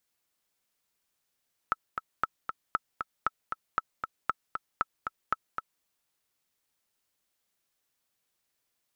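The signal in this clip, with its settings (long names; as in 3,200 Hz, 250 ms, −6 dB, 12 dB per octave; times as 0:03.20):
click track 233 BPM, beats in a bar 2, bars 8, 1,310 Hz, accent 6.5 dB −12.5 dBFS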